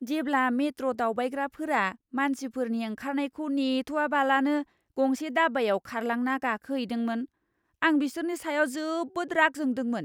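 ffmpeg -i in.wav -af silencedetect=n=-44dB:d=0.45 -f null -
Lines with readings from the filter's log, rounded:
silence_start: 7.25
silence_end: 7.82 | silence_duration: 0.57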